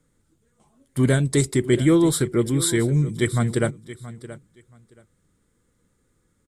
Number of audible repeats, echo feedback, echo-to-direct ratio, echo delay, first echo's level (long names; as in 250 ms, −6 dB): 2, 18%, −16.0 dB, 676 ms, −16.0 dB